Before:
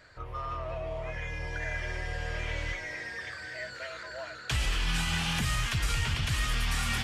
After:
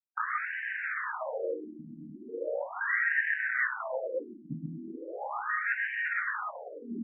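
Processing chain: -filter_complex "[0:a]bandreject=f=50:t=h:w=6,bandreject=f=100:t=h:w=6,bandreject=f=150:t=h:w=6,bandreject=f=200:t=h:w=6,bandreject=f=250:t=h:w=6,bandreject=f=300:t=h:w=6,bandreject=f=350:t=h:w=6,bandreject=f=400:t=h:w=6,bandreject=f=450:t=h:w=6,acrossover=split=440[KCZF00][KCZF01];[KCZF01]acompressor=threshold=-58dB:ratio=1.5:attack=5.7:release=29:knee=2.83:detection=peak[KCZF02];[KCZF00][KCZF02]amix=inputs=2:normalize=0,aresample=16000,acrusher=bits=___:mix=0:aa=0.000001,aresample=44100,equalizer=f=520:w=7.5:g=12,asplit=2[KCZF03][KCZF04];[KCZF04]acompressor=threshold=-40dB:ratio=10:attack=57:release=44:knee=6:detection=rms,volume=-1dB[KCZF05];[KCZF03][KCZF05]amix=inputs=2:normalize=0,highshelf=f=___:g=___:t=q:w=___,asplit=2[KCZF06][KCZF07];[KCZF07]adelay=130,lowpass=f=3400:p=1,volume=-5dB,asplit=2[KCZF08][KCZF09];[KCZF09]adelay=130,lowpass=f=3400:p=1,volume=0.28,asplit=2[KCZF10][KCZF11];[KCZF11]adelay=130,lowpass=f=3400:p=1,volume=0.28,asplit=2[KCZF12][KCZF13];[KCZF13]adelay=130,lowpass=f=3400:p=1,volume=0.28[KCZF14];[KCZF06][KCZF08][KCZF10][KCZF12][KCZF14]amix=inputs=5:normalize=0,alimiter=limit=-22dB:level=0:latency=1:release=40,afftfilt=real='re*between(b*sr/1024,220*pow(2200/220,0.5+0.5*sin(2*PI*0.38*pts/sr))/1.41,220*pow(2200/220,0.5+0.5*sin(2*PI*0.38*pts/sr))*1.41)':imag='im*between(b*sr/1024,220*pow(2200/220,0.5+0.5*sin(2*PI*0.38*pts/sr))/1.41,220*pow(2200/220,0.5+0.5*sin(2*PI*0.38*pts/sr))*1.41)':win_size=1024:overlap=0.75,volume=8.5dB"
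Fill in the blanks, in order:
6, 2400, -10, 3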